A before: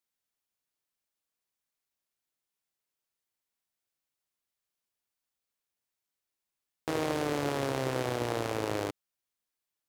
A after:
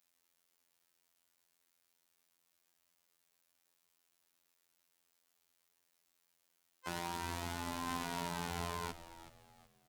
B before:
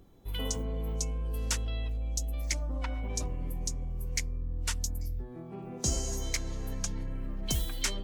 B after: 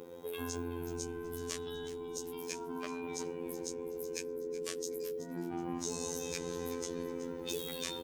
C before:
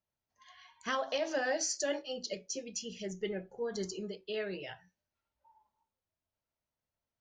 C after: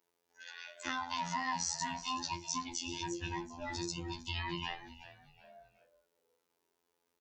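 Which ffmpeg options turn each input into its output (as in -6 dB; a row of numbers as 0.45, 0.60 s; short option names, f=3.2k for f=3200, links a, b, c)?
-filter_complex "[0:a]afftfilt=real='real(if(between(b,1,1008),(2*floor((b-1)/24)+1)*24-b,b),0)':imag='imag(if(between(b,1,1008),(2*floor((b-1)/24)+1)*24-b,b),0)*if(between(b,1,1008),-1,1)':win_size=2048:overlap=0.75,bandreject=f=60:t=h:w=6,bandreject=f=120:t=h:w=6,bandreject=f=180:t=h:w=6,acrossover=split=220|6900[a][b][c];[a]acompressor=threshold=-41dB:ratio=4[d];[b]acompressor=threshold=-38dB:ratio=4[e];[c]acompressor=threshold=-46dB:ratio=4[f];[d][e][f]amix=inputs=3:normalize=0,adynamicequalizer=threshold=0.00251:dfrequency=3800:dqfactor=1.3:tfrequency=3800:tqfactor=1.3:attack=5:release=100:ratio=0.375:range=1.5:mode=boostabove:tftype=bell,asplit=2[g][h];[h]acompressor=threshold=-52dB:ratio=10,volume=2.5dB[i];[g][i]amix=inputs=2:normalize=0,alimiter=level_in=6dB:limit=-24dB:level=0:latency=1:release=12,volume=-6dB,highpass=f=44:w=0.5412,highpass=f=44:w=1.3066,afftfilt=real='hypot(re,im)*cos(PI*b)':imag='0':win_size=2048:overlap=0.75,lowshelf=f=92:g=-9.5,asplit=2[j][k];[k]asplit=3[l][m][n];[l]adelay=374,afreqshift=-98,volume=-14dB[o];[m]adelay=748,afreqshift=-196,volume=-23.4dB[p];[n]adelay=1122,afreqshift=-294,volume=-32.7dB[q];[o][p][q]amix=inputs=3:normalize=0[r];[j][r]amix=inputs=2:normalize=0,volume=5.5dB"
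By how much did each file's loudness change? -8.5, -5.0, -1.5 LU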